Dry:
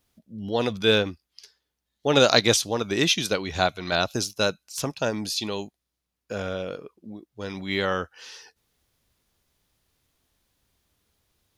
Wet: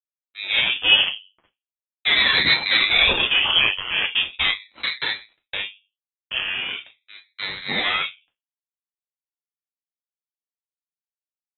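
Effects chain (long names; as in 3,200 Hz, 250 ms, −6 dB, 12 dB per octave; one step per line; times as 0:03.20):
0:02.20–0:03.70: leveller curve on the samples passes 2
0:04.64–0:05.53: fade out
fuzz pedal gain 26 dB, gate −33 dBFS
convolution reverb RT60 0.25 s, pre-delay 3 ms, DRR −0.5 dB
voice inversion scrambler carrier 3,200 Hz
ring modulator whose carrier an LFO sweeps 460 Hz, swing 90%, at 0.4 Hz
level −6.5 dB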